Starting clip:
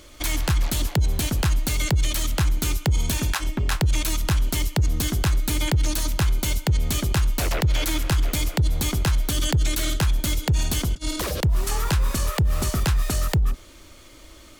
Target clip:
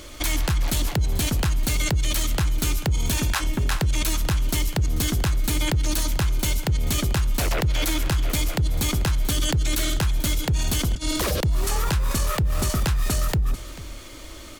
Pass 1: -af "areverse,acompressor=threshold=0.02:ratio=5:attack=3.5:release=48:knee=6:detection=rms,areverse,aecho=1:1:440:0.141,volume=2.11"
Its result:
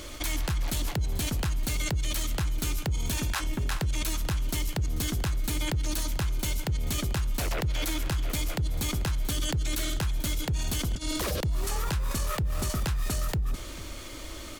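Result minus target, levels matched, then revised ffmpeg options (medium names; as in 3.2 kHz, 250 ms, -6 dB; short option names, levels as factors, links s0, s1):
compression: peak gain reduction +6.5 dB
-af "areverse,acompressor=threshold=0.0501:ratio=5:attack=3.5:release=48:knee=6:detection=rms,areverse,aecho=1:1:440:0.141,volume=2.11"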